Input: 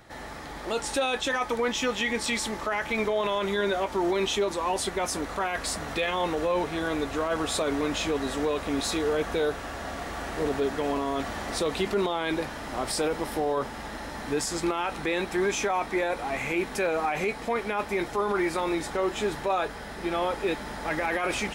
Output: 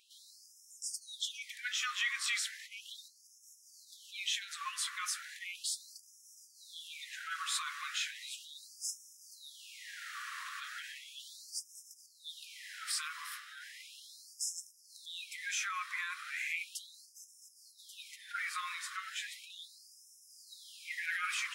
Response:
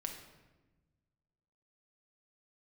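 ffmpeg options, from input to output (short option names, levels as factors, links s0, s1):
-af "afftfilt=real='re*gte(b*sr/1024,990*pow(5200/990,0.5+0.5*sin(2*PI*0.36*pts/sr)))':imag='im*gte(b*sr/1024,990*pow(5200/990,0.5+0.5*sin(2*PI*0.36*pts/sr)))':win_size=1024:overlap=0.75,volume=0.596"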